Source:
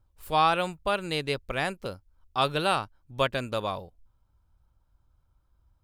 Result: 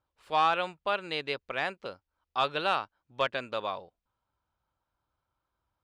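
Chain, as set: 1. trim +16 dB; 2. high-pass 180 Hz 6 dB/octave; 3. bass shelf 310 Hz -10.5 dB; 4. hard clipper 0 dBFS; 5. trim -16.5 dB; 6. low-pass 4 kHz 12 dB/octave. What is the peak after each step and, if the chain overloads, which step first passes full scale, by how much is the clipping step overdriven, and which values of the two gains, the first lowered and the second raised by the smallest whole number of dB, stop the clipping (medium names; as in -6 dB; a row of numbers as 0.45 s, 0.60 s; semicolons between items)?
+5.5 dBFS, +5.5 dBFS, +5.0 dBFS, 0.0 dBFS, -16.5 dBFS, -16.0 dBFS; step 1, 5.0 dB; step 1 +11 dB, step 5 -11.5 dB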